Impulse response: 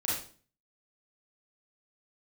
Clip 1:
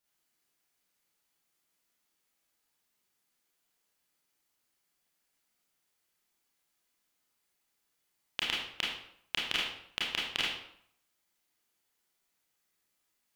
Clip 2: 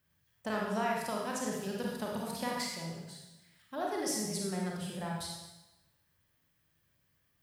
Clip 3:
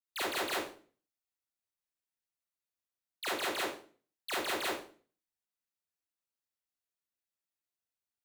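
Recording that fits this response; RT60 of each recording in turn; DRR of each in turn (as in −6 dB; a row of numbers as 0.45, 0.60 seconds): 3; 0.65, 1.0, 0.45 seconds; −5.5, −2.5, −7.0 decibels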